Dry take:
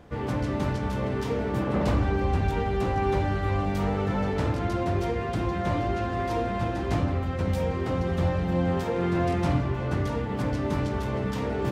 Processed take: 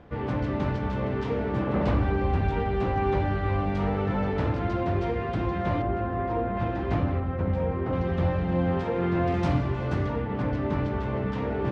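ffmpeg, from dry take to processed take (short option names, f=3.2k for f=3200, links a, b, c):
-af "asetnsamples=n=441:p=0,asendcmd='5.82 lowpass f 1600;6.57 lowpass f 2700;7.2 lowpass f 1700;7.93 lowpass f 3100;9.34 lowpass f 5800;10.05 lowpass f 2700',lowpass=3.3k"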